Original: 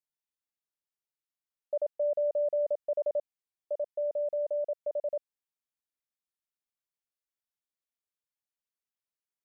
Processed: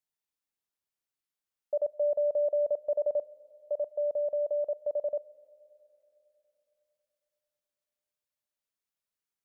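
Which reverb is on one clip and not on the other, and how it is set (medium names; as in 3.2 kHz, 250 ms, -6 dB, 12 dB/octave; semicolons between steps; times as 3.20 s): Schroeder reverb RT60 3.4 s, combs from 25 ms, DRR 20 dB; trim +1.5 dB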